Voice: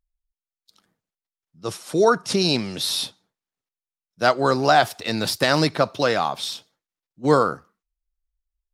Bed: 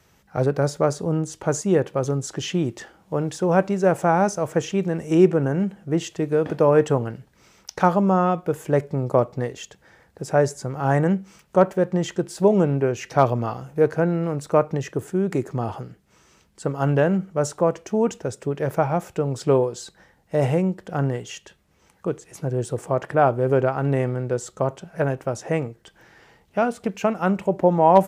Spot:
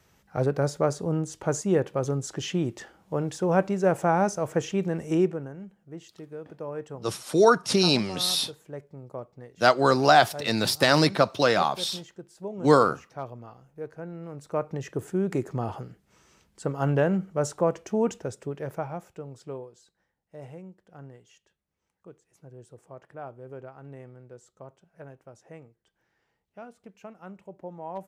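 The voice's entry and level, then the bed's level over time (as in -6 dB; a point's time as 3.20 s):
5.40 s, -1.0 dB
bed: 5.10 s -4 dB
5.56 s -19 dB
13.96 s -19 dB
15.03 s -4 dB
18.12 s -4 dB
19.83 s -22.5 dB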